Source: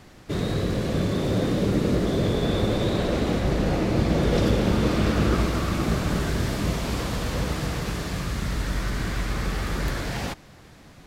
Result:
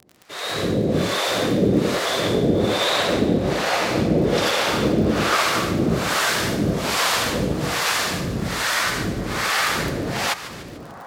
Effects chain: HPF 90 Hz 12 dB/oct; low shelf 320 Hz -12 dB; AGC gain up to 16 dB; harmonic tremolo 1.2 Hz, depth 100%, crossover 570 Hz; split-band echo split 1300 Hz, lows 0.732 s, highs 0.147 s, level -13.5 dB; crackle 41/s -31 dBFS

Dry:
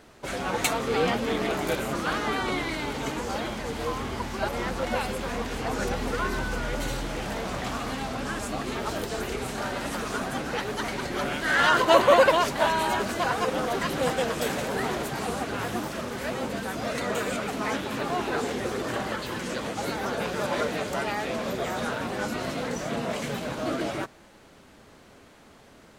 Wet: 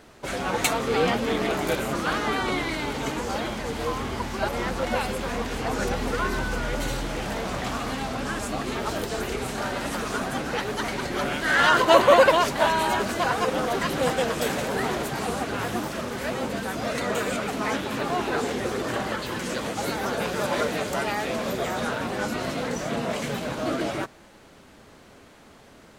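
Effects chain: 19.39–21.67 high shelf 7900 Hz +4.5 dB; gain +2 dB

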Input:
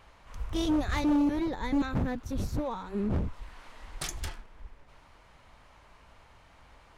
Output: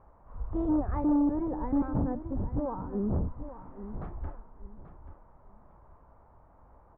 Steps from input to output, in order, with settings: LPF 1100 Hz 24 dB/oct; on a send: feedback echo 0.834 s, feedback 25%, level -12 dB

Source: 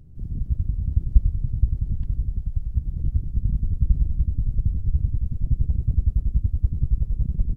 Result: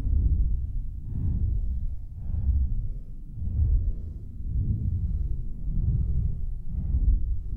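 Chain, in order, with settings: transient shaper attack -7 dB, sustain +2 dB; Paulstretch 12×, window 0.05 s, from 6.34; gain -2 dB

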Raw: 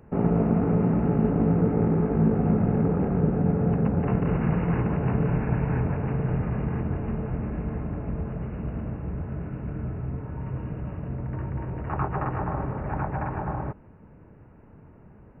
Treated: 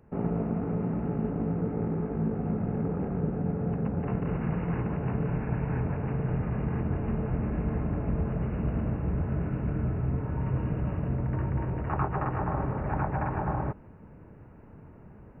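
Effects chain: vocal rider; gain -4 dB

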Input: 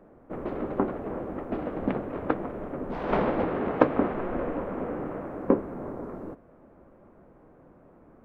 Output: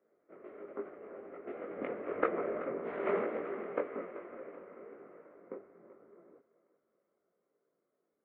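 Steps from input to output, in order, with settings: Doppler pass-by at 2.45, 11 m/s, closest 3 m; speaker cabinet 240–3000 Hz, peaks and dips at 260 Hz -3 dB, 410 Hz +8 dB, 580 Hz +4 dB, 870 Hz -6 dB, 1300 Hz +6 dB, 2100 Hz +10 dB; chorus voices 6, 1.3 Hz, delay 20 ms, depth 3 ms; thinning echo 0.383 s, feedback 39%, high-pass 400 Hz, level -13.5 dB

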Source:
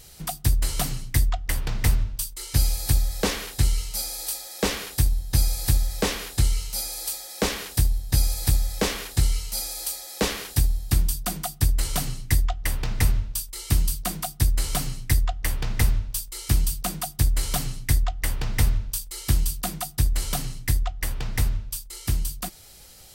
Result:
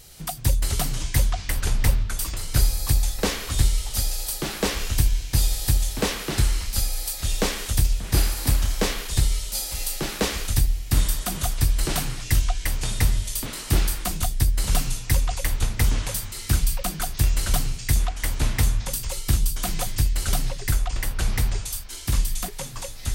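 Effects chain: echoes that change speed 0.105 s, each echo -5 st, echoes 3, each echo -6 dB

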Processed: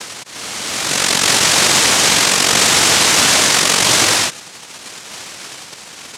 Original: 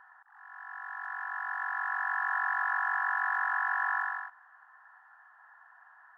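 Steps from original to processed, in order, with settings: LFO notch saw down 0.78 Hz 940–2800 Hz; noise vocoder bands 1; maximiser +29 dB; gain -1 dB

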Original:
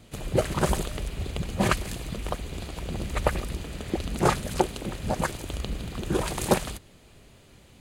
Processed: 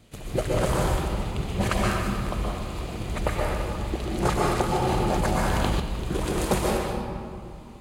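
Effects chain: reverb RT60 2.5 s, pre-delay 0.117 s, DRR -4 dB; 4.82–5.8 fast leveller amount 100%; gain -3.5 dB

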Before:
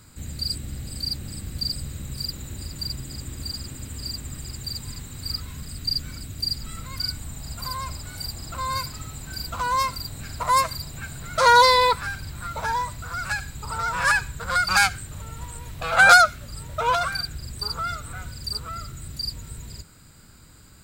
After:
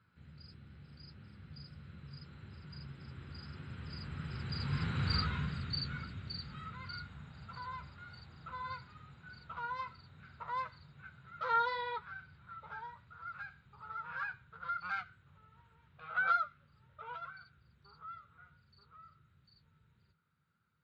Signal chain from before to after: Doppler pass-by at 5.05, 11 m/s, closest 3.2 m; flange 1.6 Hz, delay 9.5 ms, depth 3.6 ms, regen -48%; speaker cabinet 100–3400 Hz, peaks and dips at 150 Hz +6 dB, 290 Hz -8 dB, 640 Hz -6 dB, 1400 Hz +9 dB; gain +10 dB

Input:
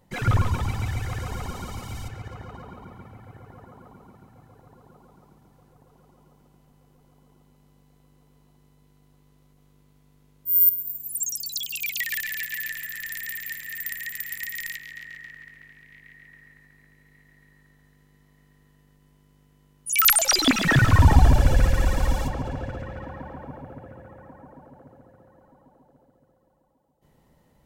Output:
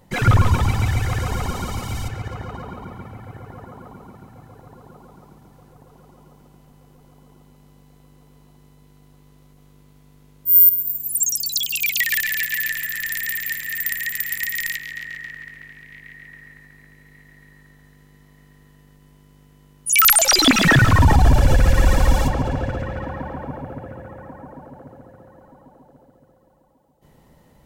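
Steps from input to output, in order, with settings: limiter -13.5 dBFS, peak gain reduction 10 dB; gain +8 dB

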